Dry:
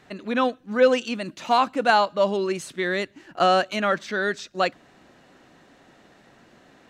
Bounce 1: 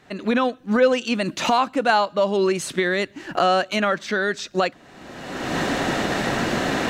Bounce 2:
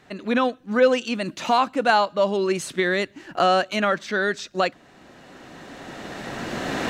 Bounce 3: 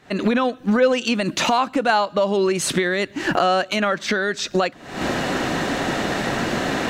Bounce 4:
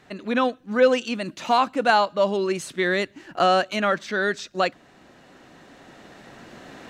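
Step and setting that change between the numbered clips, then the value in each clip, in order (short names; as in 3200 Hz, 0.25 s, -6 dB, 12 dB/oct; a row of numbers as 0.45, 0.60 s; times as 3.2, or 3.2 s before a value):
recorder AGC, rising by: 34, 13, 84, 5.3 dB/s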